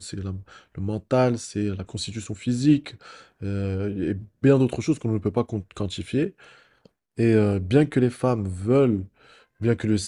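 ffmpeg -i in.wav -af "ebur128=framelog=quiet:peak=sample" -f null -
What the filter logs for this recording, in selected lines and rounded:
Integrated loudness:
  I:         -24.1 LUFS
  Threshold: -34.8 LUFS
Loudness range:
  LRA:         2.9 LU
  Threshold: -44.7 LUFS
  LRA low:   -26.1 LUFS
  LRA high:  -23.2 LUFS
Sample peak:
  Peak:       -5.8 dBFS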